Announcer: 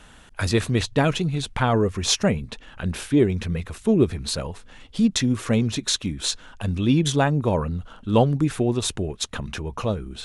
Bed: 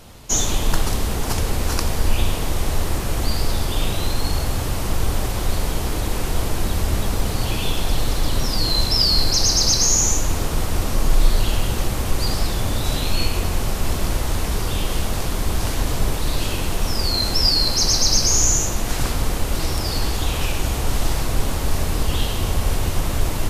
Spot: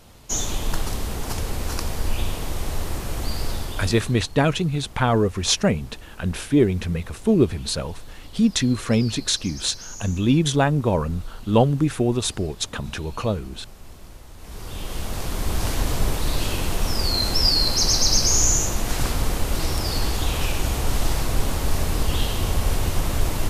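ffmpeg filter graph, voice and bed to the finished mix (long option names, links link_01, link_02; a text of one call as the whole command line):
ffmpeg -i stem1.wav -i stem2.wav -filter_complex "[0:a]adelay=3400,volume=1dB[link_01];[1:a]volume=14.5dB,afade=type=out:start_time=3.49:duration=0.72:silence=0.158489,afade=type=in:start_time=14.37:duration=1.31:silence=0.1[link_02];[link_01][link_02]amix=inputs=2:normalize=0" out.wav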